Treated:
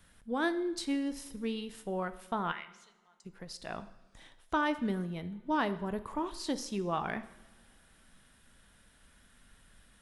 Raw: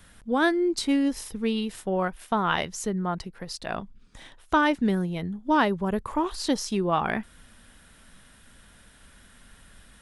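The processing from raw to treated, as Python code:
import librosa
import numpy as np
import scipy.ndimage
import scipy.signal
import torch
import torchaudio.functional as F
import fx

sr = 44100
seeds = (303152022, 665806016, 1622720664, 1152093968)

y = fx.bandpass_q(x, sr, hz=fx.line((2.51, 1900.0), (3.24, 7700.0)), q=4.6, at=(2.51, 3.24), fade=0.02)
y = fx.rev_double_slope(y, sr, seeds[0], early_s=0.87, late_s=3.2, knee_db=-22, drr_db=11.5)
y = y * librosa.db_to_amplitude(-9.0)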